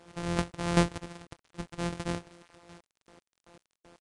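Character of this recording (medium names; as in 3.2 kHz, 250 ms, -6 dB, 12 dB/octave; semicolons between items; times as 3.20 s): a buzz of ramps at a fixed pitch in blocks of 256 samples; chopped level 2.6 Hz, depth 65%, duty 30%; a quantiser's noise floor 10-bit, dither none; AAC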